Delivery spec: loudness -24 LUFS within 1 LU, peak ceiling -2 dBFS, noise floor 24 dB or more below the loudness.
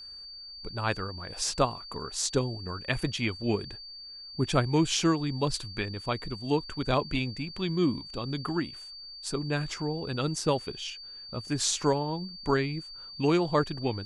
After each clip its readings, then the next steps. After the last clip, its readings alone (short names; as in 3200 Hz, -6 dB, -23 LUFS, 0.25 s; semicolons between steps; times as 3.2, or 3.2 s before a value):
steady tone 4600 Hz; tone level -42 dBFS; loudness -30.0 LUFS; peak -10.5 dBFS; loudness target -24.0 LUFS
-> notch 4600 Hz, Q 30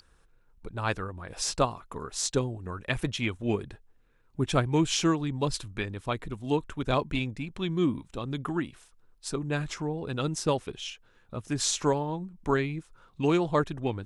steady tone none; loudness -30.0 LUFS; peak -11.0 dBFS; loudness target -24.0 LUFS
-> gain +6 dB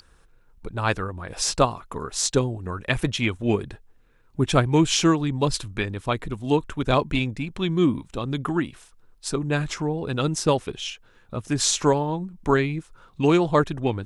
loudness -24.0 LUFS; peak -5.0 dBFS; noise floor -57 dBFS